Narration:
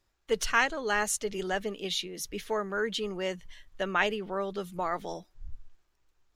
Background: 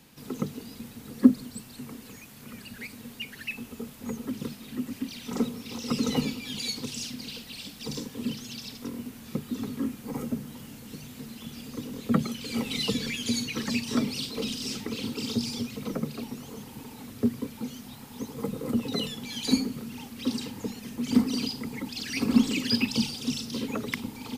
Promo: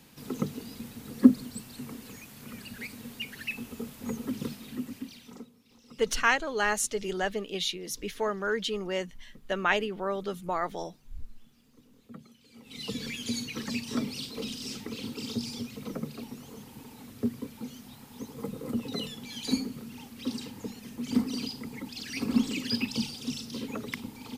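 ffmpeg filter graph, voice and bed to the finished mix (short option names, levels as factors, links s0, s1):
-filter_complex "[0:a]adelay=5700,volume=1.12[s0];[1:a]volume=8.41,afade=t=out:st=4.52:d=0.94:silence=0.0707946,afade=t=in:st=12.62:d=0.43:silence=0.11885[s1];[s0][s1]amix=inputs=2:normalize=0"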